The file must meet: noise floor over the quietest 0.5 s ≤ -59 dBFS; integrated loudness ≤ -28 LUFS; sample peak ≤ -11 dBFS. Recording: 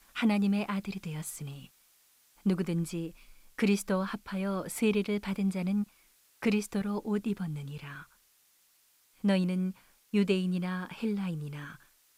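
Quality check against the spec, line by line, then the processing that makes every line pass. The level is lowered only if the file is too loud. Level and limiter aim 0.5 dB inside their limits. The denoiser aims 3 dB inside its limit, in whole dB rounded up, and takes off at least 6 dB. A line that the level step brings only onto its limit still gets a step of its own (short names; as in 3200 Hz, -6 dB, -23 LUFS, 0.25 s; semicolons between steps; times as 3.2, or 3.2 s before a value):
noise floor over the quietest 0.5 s -67 dBFS: OK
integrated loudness -32.0 LUFS: OK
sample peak -16.0 dBFS: OK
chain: none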